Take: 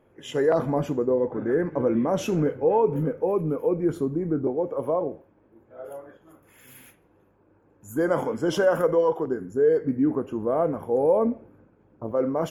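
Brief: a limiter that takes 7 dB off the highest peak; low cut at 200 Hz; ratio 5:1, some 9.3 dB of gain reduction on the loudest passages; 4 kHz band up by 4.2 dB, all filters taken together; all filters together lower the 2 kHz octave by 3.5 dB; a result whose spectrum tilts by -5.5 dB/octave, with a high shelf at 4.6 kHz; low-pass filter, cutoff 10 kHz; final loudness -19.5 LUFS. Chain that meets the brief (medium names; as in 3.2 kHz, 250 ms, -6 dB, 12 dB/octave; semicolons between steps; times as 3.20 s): high-pass 200 Hz; low-pass 10 kHz; peaking EQ 2 kHz -7.5 dB; peaking EQ 4 kHz +6 dB; treble shelf 4.6 kHz +6.5 dB; compression 5:1, threshold -27 dBFS; trim +14 dB; peak limiter -10 dBFS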